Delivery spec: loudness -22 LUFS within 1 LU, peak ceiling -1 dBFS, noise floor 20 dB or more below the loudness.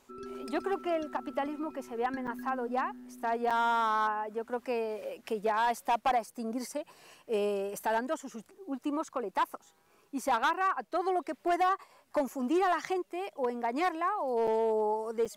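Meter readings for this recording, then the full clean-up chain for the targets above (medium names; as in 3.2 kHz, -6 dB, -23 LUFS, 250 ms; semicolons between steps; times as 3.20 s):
clipped samples 1.3%; clipping level -22.5 dBFS; dropouts 4; longest dropout 6.1 ms; loudness -32.0 LUFS; peak level -22.5 dBFS; loudness target -22.0 LUFS
-> clip repair -22.5 dBFS; interpolate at 2.27/3.50/14.47/15.25 s, 6.1 ms; trim +10 dB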